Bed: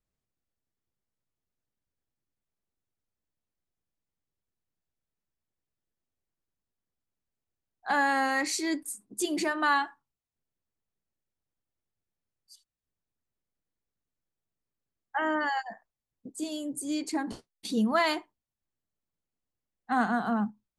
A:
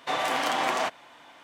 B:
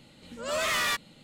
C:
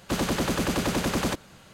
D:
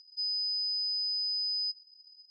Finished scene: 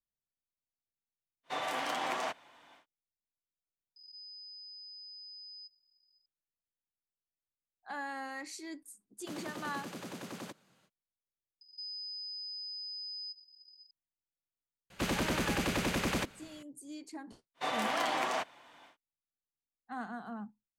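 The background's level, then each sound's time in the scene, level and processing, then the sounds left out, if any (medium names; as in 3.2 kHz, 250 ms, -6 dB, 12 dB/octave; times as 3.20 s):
bed -14.5 dB
1.43 s: add A -8.5 dB, fades 0.10 s
3.96 s: add D -17.5 dB + swell ahead of each attack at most 44 dB/s
9.17 s: add C -17.5 dB, fades 0.05 s + high-pass 130 Hz 24 dB/octave
11.61 s: replace with D -2.5 dB + compression, threshold -39 dBFS
14.90 s: add C -7 dB + peaking EQ 2.3 kHz +6 dB 0.93 oct
17.54 s: add A -6.5 dB, fades 0.10 s
not used: B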